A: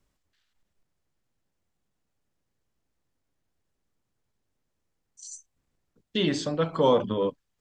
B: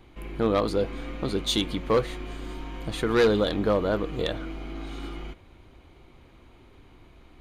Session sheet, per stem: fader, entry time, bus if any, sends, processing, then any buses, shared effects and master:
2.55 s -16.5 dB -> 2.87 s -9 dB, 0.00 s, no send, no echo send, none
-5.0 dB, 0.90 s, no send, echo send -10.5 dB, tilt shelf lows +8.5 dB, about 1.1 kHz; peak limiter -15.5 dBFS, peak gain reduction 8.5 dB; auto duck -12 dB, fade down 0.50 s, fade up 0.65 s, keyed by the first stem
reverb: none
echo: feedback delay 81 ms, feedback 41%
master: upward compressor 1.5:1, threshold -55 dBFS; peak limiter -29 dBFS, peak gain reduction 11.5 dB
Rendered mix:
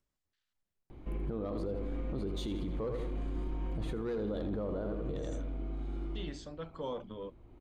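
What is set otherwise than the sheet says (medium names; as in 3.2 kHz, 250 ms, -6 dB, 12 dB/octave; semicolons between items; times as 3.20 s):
stem A -16.5 dB -> -24.5 dB; stem B: missing peak limiter -15.5 dBFS, peak gain reduction 8.5 dB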